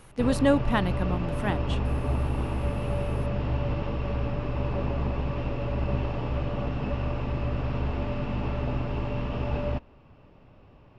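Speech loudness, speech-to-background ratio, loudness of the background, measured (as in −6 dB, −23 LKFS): −27.5 LKFS, 2.5 dB, −30.0 LKFS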